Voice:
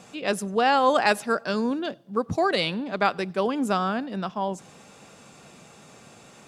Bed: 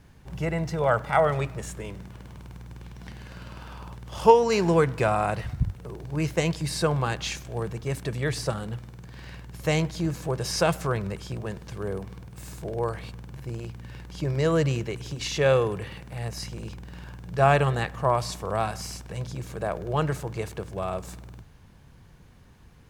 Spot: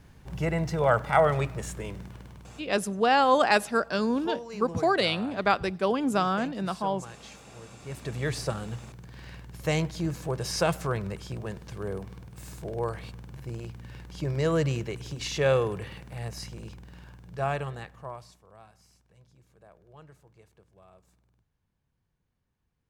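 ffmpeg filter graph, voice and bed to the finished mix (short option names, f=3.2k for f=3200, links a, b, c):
-filter_complex "[0:a]adelay=2450,volume=-1dB[a];[1:a]volume=15dB,afade=t=out:st=2.05:d=0.74:silence=0.133352,afade=t=in:st=7.78:d=0.4:silence=0.177828,afade=t=out:st=16.03:d=2.39:silence=0.0668344[b];[a][b]amix=inputs=2:normalize=0"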